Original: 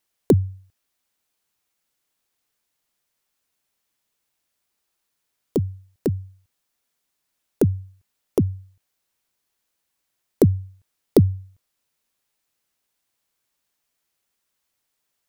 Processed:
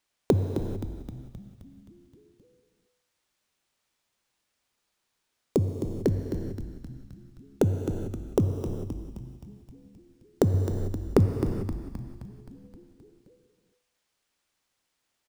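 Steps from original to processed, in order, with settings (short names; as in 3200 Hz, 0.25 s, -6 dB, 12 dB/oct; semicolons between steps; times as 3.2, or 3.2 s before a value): median filter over 3 samples; 10.54–11.26 low shelf 420 Hz +10 dB; compressor, threshold -19 dBFS, peak gain reduction 15 dB; frequency-shifting echo 0.262 s, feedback 61%, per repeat -74 Hz, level -9.5 dB; non-linear reverb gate 0.47 s flat, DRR 6.5 dB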